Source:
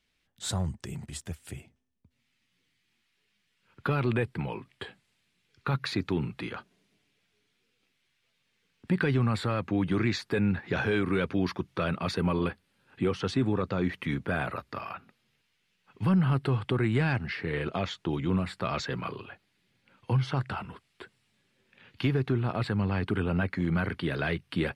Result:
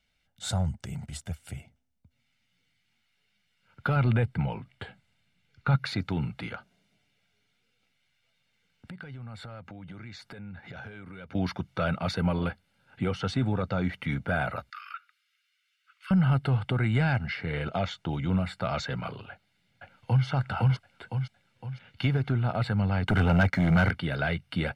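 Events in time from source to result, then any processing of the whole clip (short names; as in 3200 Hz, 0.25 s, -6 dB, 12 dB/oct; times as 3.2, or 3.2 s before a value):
3.96–5.76 tone controls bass +4 dB, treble -4 dB
6.55–11.35 compressor 5:1, threshold -42 dBFS
14.7–16.11 steep high-pass 1200 Hz 72 dB/oct
19.3–20.25 echo throw 0.51 s, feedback 45%, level 0 dB
23.07–23.91 sample leveller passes 2
whole clip: high shelf 6000 Hz -4.5 dB; comb 1.4 ms, depth 58%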